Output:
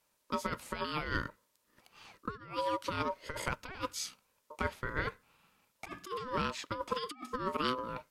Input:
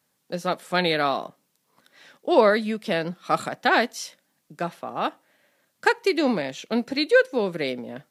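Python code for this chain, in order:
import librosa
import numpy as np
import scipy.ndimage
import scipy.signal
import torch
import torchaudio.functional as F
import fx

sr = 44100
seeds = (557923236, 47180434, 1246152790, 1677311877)

y = fx.over_compress(x, sr, threshold_db=-26.0, ratio=-0.5)
y = y * np.sin(2.0 * np.pi * 760.0 * np.arange(len(y)) / sr)
y = y * librosa.db_to_amplitude(-6.0)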